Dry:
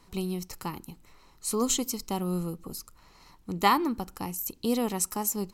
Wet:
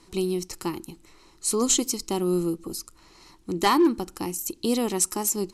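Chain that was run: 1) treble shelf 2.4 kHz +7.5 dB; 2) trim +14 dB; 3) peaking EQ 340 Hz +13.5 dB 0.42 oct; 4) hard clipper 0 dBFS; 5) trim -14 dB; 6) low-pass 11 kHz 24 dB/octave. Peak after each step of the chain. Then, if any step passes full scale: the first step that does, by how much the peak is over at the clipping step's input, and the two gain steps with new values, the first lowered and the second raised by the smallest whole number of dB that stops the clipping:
-6.5 dBFS, +7.5 dBFS, +8.0 dBFS, 0.0 dBFS, -14.0 dBFS, -12.0 dBFS; step 2, 8.0 dB; step 2 +6 dB, step 5 -6 dB

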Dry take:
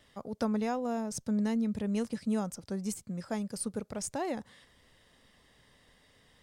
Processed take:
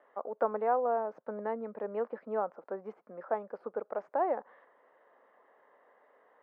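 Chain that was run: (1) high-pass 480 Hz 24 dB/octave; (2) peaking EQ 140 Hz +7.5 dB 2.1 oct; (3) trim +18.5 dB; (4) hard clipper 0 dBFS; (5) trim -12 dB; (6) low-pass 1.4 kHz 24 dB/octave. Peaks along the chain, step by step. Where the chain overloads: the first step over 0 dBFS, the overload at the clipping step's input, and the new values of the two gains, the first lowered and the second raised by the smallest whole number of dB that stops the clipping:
-24.0 dBFS, -22.5 dBFS, -4.0 dBFS, -4.0 dBFS, -16.0 dBFS, -17.0 dBFS; nothing clips

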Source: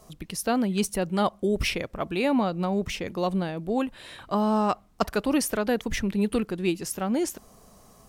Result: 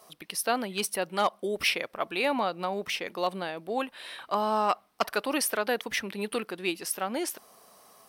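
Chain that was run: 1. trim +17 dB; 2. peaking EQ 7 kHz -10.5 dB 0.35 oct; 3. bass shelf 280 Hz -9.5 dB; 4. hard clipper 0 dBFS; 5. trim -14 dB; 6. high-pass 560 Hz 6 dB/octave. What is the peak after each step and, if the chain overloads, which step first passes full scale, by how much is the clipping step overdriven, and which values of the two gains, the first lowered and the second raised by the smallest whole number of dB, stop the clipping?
+9.0 dBFS, +8.5 dBFS, +8.5 dBFS, 0.0 dBFS, -14.0 dBFS, -11.0 dBFS; step 1, 8.5 dB; step 1 +8 dB, step 5 -5 dB

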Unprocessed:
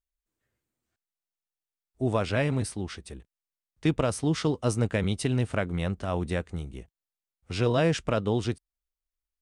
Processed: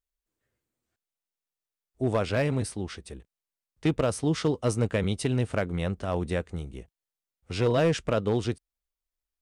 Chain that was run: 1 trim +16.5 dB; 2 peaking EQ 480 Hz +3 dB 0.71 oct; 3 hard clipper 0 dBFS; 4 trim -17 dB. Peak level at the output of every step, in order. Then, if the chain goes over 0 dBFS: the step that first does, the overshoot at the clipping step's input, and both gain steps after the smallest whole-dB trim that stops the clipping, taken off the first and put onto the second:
+4.0 dBFS, +5.0 dBFS, 0.0 dBFS, -17.0 dBFS; step 1, 5.0 dB; step 1 +11.5 dB, step 4 -12 dB

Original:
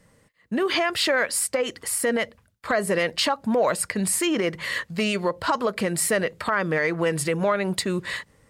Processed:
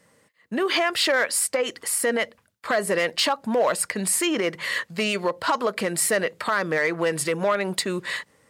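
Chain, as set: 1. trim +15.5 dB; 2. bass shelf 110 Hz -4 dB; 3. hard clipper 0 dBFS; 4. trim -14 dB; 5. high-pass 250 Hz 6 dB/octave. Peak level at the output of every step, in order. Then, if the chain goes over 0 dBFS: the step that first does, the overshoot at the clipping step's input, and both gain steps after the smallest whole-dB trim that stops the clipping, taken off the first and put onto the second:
+4.5 dBFS, +4.5 dBFS, 0.0 dBFS, -14.0 dBFS, -11.0 dBFS; step 1, 4.5 dB; step 1 +10.5 dB, step 4 -9 dB

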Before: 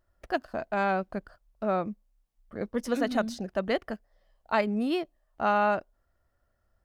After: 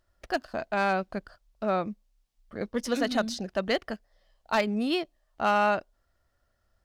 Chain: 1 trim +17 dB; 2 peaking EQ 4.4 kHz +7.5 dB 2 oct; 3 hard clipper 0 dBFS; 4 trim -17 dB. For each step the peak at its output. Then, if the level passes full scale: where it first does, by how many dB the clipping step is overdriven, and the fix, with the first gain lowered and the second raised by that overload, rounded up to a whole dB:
+4.5 dBFS, +7.0 dBFS, 0.0 dBFS, -17.0 dBFS; step 1, 7.0 dB; step 1 +10 dB, step 4 -10 dB

